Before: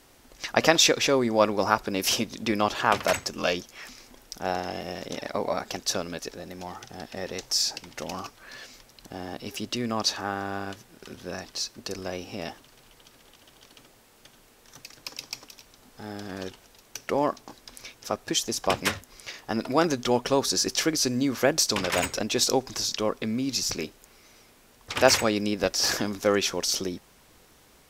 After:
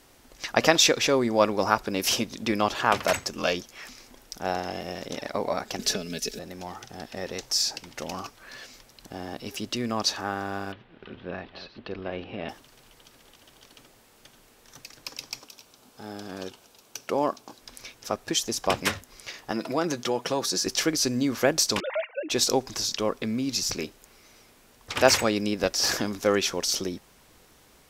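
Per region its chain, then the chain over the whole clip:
5.79–6.39 bell 1000 Hz -14.5 dB 1.3 oct + comb 4.7 ms, depth 76% + three-band squash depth 100%
10.72–12.49 reverse delay 0.19 s, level -12.5 dB + steep low-pass 3500 Hz
15.39–17.61 HPF 150 Hz 6 dB/oct + bell 1900 Hz -7.5 dB 0.31 oct
19.51–20.66 HPF 130 Hz + comb 6 ms, depth 34% + compressor 2:1, threshold -24 dBFS
21.8–22.3 sine-wave speech + resonator 210 Hz, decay 0.31 s, harmonics odd, mix 40%
whole clip: dry

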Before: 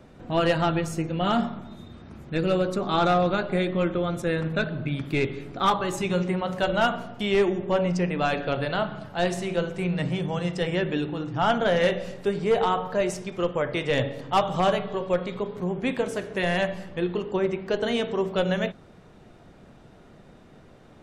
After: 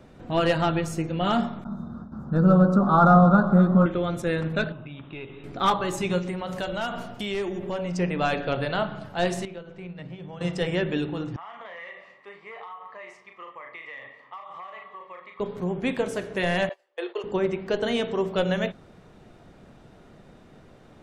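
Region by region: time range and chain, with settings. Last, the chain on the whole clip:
1.64–3.86 gate with hold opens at -34 dBFS, closes at -37 dBFS + EQ curve 110 Hz 0 dB, 200 Hz +13 dB, 340 Hz -3 dB, 610 Hz +2 dB, 1400 Hz +8 dB, 2200 Hz -27 dB, 5100 Hz -8 dB, 9100 Hz -14 dB + echo with dull and thin repeats by turns 0.124 s, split 870 Hz, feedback 71%, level -11 dB
4.72–5.44 rippled Chebyshev low-pass 3900 Hz, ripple 9 dB + compressor 2.5:1, threshold -36 dBFS
6.18–7.97 high shelf 3900 Hz +6.5 dB + compressor 3:1, threshold -28 dBFS + added noise brown -53 dBFS
9.45–10.41 gate -25 dBFS, range -10 dB + LPF 4100 Hz + compressor 12:1, threshold -34 dBFS
11.36–15.4 double band-pass 1500 Hz, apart 0.76 oct + doubler 37 ms -5.5 dB + compressor 12:1, threshold -36 dBFS
16.69–17.24 gate -32 dBFS, range -26 dB + steep high-pass 400 Hz
whole clip: dry

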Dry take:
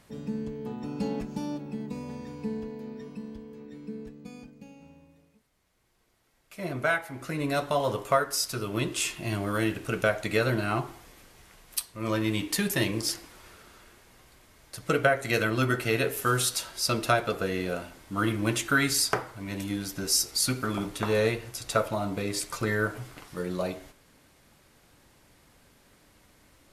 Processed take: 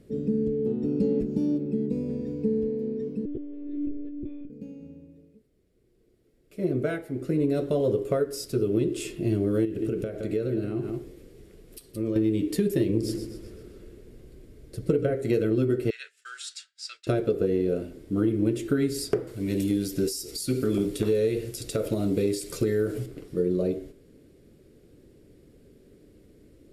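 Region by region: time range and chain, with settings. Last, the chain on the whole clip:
3.25–4.5 monotone LPC vocoder at 8 kHz 290 Hz + backwards sustainer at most 34 dB/s
9.65–12.16 echo 0.169 s -11.5 dB + compressor 5:1, threshold -32 dBFS
12.89–15.15 low shelf 140 Hz +7.5 dB + feedback echo 0.127 s, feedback 47%, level -11 dB
15.9–17.07 elliptic band-pass 1500–7700 Hz, stop band 70 dB + expander -36 dBFS
19.27–23.06 high shelf 2100 Hz +12 dB + compressor 4:1, threshold -24 dBFS
whole clip: resonant low shelf 610 Hz +13.5 dB, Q 3; notch 6200 Hz, Q 14; compressor, threshold -12 dBFS; gain -8 dB

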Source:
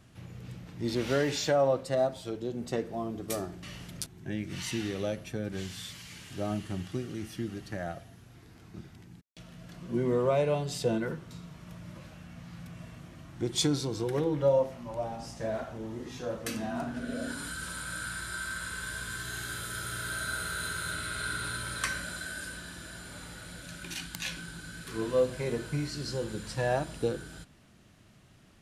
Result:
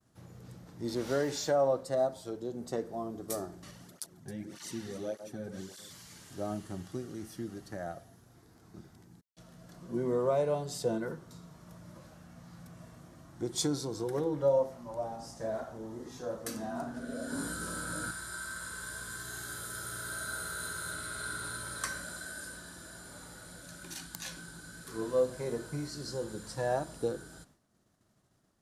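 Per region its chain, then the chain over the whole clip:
3.71–5.91 echo with dull and thin repeats by turns 0.135 s, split 1600 Hz, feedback 58%, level -9 dB + tape flanging out of phase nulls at 1.7 Hz, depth 3.5 ms
17.32–18.11 bell 260 Hz +11 dB 2.9 oct + doubler 19 ms -4 dB
whole clip: bell 2600 Hz -13 dB 1.1 oct; expander -52 dBFS; low shelf 240 Hz -8.5 dB

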